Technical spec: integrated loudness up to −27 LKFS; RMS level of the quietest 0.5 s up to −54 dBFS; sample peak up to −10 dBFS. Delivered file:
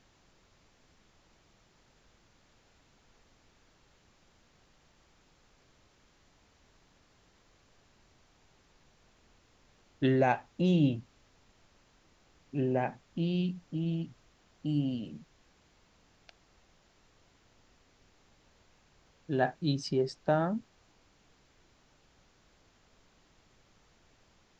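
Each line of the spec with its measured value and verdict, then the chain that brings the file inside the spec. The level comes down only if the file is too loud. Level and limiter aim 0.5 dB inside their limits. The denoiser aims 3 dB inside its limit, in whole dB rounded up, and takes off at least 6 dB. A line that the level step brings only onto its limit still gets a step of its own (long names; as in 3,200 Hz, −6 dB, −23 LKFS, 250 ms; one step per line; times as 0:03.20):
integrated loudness −31.5 LKFS: in spec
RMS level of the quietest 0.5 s −66 dBFS: in spec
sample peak −13.0 dBFS: in spec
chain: no processing needed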